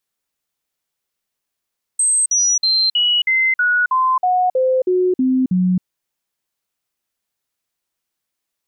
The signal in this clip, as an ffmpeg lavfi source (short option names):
-f lavfi -i "aevalsrc='0.237*clip(min(mod(t,0.32),0.27-mod(t,0.32))/0.005,0,1)*sin(2*PI*8270*pow(2,-floor(t/0.32)/2)*mod(t,0.32))':d=3.84:s=44100"